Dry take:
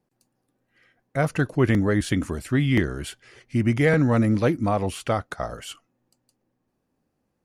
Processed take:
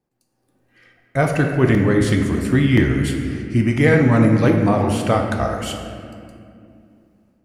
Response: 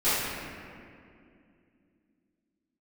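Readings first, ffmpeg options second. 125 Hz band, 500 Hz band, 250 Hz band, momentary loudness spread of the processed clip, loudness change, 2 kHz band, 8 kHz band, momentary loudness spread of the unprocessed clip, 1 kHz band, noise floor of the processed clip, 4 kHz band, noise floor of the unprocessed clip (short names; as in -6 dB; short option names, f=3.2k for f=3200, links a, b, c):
+6.5 dB, +6.0 dB, +6.5 dB, 12 LU, +5.5 dB, +5.5 dB, +4.5 dB, 13 LU, +6.0 dB, -69 dBFS, +5.0 dB, -76 dBFS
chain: -filter_complex "[0:a]equalizer=f=66:t=o:w=1.5:g=3,dynaudnorm=f=260:g=3:m=11dB,asplit=2[a][b];[1:a]atrim=start_sample=2205[c];[b][c]afir=irnorm=-1:irlink=0,volume=-16dB[d];[a][d]amix=inputs=2:normalize=0,volume=-4.5dB"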